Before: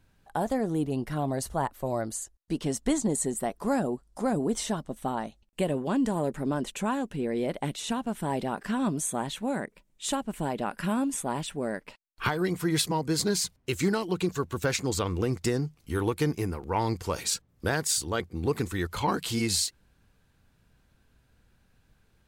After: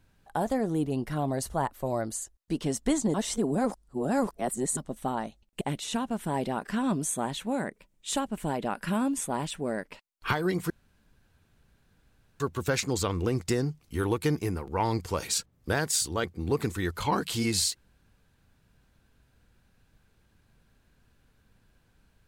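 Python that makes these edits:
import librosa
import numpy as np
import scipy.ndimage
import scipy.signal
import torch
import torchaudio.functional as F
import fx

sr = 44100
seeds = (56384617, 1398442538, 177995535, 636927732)

y = fx.edit(x, sr, fx.reverse_span(start_s=3.14, length_s=1.63),
    fx.cut(start_s=5.61, length_s=1.96),
    fx.room_tone_fill(start_s=12.66, length_s=1.7), tone=tone)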